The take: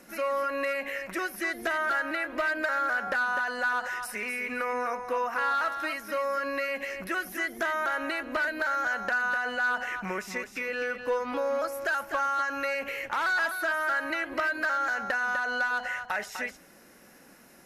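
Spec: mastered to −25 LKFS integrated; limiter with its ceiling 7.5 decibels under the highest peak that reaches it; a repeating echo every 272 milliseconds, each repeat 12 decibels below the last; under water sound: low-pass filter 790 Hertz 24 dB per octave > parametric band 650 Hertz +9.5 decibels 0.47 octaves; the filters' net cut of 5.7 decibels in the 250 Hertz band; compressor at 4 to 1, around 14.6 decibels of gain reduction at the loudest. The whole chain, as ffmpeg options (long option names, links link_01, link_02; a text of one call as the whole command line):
ffmpeg -i in.wav -af "equalizer=frequency=250:width_type=o:gain=-8,acompressor=threshold=-43dB:ratio=4,alimiter=level_in=12.5dB:limit=-24dB:level=0:latency=1,volume=-12.5dB,lowpass=frequency=790:width=0.5412,lowpass=frequency=790:width=1.3066,equalizer=frequency=650:width_type=o:width=0.47:gain=9.5,aecho=1:1:272|544|816:0.251|0.0628|0.0157,volume=22dB" out.wav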